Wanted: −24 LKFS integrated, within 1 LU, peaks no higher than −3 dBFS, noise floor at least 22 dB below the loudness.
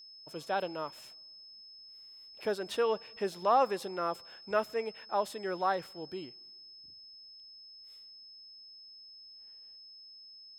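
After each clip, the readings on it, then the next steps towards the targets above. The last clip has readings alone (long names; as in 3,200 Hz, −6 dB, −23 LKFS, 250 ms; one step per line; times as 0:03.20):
interfering tone 5,200 Hz; level of the tone −50 dBFS; integrated loudness −33.5 LKFS; sample peak −15.0 dBFS; target loudness −24.0 LKFS
→ notch filter 5,200 Hz, Q 30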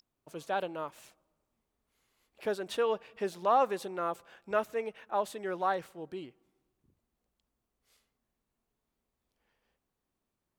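interfering tone none found; integrated loudness −33.5 LKFS; sample peak −15.5 dBFS; target loudness −24.0 LKFS
→ level +9.5 dB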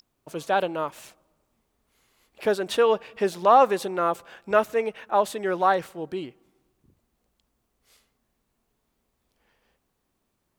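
integrated loudness −24.0 LKFS; sample peak −6.0 dBFS; background noise floor −76 dBFS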